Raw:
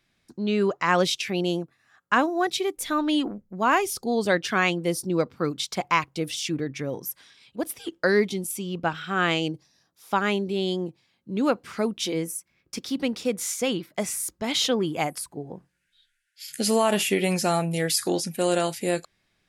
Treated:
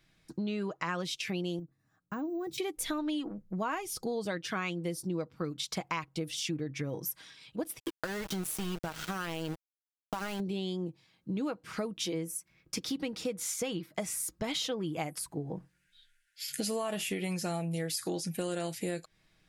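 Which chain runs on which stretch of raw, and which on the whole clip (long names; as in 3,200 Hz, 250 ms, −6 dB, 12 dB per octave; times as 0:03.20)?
0:01.59–0:02.58: drawn EQ curve 280 Hz 0 dB, 450 Hz −8 dB, 2,800 Hz −22 dB, 6,900 Hz −12 dB, 11,000 Hz −9 dB + downward compressor 2.5 to 1, threshold −34 dBFS + bad sample-rate conversion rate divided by 2×, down filtered, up hold
0:07.79–0:10.40: downward compressor 12 to 1, threshold −26 dBFS + centre clipping without the shift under −32.5 dBFS
whole clip: low-shelf EQ 130 Hz +6.5 dB; comb filter 6.3 ms, depth 40%; downward compressor 6 to 1, threshold −32 dBFS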